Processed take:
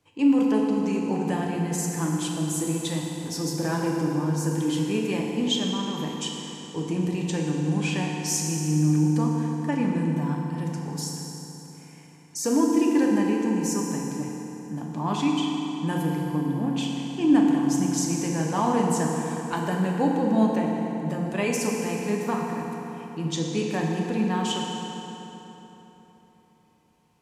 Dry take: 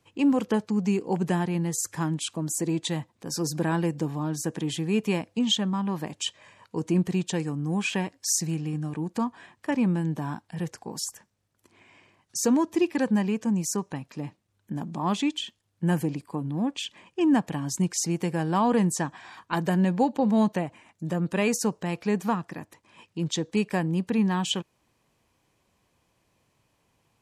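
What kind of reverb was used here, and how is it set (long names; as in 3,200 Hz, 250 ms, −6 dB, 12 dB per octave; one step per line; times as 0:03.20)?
feedback delay network reverb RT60 3.7 s, high-frequency decay 0.7×, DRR −1.5 dB
level −3 dB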